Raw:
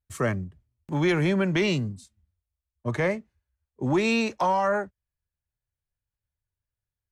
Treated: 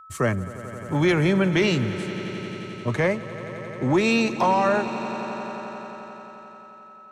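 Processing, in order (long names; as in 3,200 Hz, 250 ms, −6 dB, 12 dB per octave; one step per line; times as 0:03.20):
steady tone 1,300 Hz −47 dBFS
echo that builds up and dies away 88 ms, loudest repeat 5, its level −17.5 dB
level +3 dB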